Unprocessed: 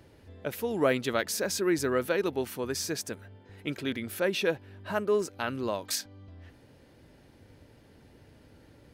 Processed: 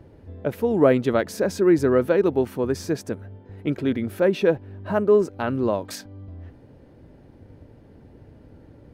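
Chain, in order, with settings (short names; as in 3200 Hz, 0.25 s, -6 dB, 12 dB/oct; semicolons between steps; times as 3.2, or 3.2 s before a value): in parallel at -10 dB: backlash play -43.5 dBFS; on the sum: tilt shelf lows +8.5 dB, about 1500 Hz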